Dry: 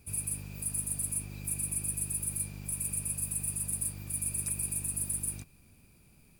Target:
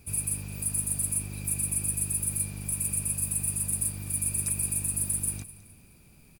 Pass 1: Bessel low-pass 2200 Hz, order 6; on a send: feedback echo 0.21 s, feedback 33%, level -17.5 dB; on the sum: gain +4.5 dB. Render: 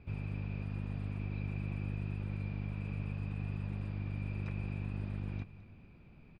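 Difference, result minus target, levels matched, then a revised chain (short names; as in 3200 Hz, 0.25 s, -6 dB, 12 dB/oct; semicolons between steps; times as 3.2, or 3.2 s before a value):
2000 Hz band +8.5 dB
on a send: feedback echo 0.21 s, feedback 33%, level -17.5 dB; on the sum: gain +4.5 dB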